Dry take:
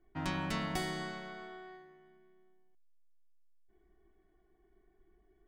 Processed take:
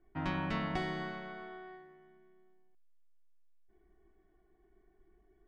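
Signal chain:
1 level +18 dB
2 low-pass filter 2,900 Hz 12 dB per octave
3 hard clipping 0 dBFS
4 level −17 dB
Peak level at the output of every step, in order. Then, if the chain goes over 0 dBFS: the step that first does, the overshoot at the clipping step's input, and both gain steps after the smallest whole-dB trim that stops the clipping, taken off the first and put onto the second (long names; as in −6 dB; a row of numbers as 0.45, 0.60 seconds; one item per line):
−4.5, −5.0, −5.0, −22.0 dBFS
no step passes full scale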